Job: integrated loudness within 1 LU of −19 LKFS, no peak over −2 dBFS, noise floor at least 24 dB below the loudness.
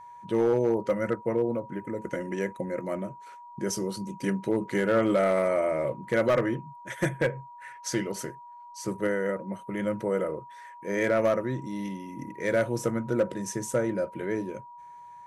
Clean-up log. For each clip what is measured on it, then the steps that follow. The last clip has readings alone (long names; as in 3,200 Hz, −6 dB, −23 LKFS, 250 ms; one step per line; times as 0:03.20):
share of clipped samples 0.4%; peaks flattened at −17.0 dBFS; interfering tone 960 Hz; level of the tone −44 dBFS; integrated loudness −29.0 LKFS; sample peak −17.0 dBFS; target loudness −19.0 LKFS
→ clipped peaks rebuilt −17 dBFS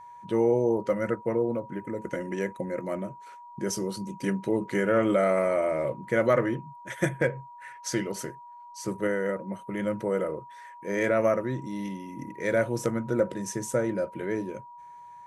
share of clipped samples 0.0%; interfering tone 960 Hz; level of the tone −44 dBFS
→ notch filter 960 Hz, Q 30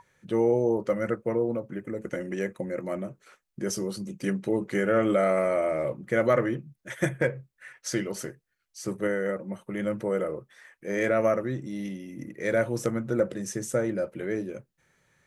interfering tone none found; integrated loudness −28.5 LKFS; sample peak −10.0 dBFS; target loudness −19.0 LKFS
→ level +9.5 dB
brickwall limiter −2 dBFS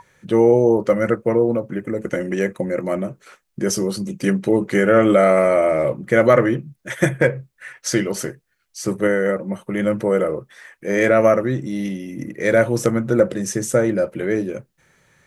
integrated loudness −19.0 LKFS; sample peak −2.0 dBFS; background noise floor −69 dBFS